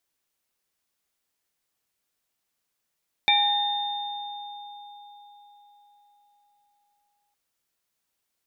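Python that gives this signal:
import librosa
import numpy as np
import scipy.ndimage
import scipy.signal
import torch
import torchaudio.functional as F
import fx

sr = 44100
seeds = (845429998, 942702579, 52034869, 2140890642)

y = fx.additive_free(sr, length_s=4.06, hz=821.0, level_db=-21.5, upper_db=(-11.0, 4.0, 3), decay_s=4.65, upper_decays_s=(1.59, 0.35, 2.97), upper_hz=(1820.0, 2340.0, 3630.0))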